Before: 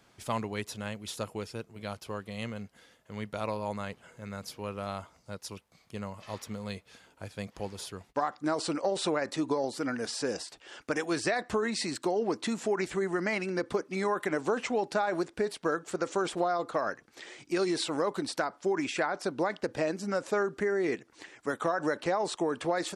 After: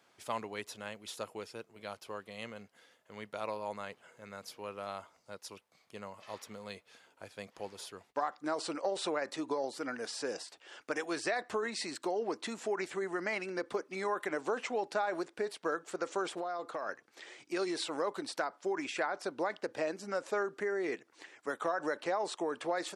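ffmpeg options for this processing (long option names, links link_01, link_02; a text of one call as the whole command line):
ffmpeg -i in.wav -filter_complex "[0:a]asettb=1/sr,asplit=3[link_01][link_02][link_03];[link_01]atrim=end=16.394[link_04];[link_02]atrim=start=16.39:end=16.89,asetpts=PTS-STARTPTS,afade=type=in:duration=0.004:curve=qsin,afade=type=out:start_time=0.496:duration=0.004:curve=qsin,acompressor=threshold=-30dB:ratio=3:attack=3.2:release=140:knee=1:detection=peak[link_05];[link_03]atrim=start=16.886[link_06];[link_04][link_05]acrossfade=duration=0.004:curve1=hsin:curve2=qsin[link_07];[link_07][link_06]acrossfade=duration=0.004:curve1=qsin:curve2=hsin,highpass=74,bass=frequency=250:gain=-12,treble=frequency=4000:gain=-2,volume=-3.5dB" out.wav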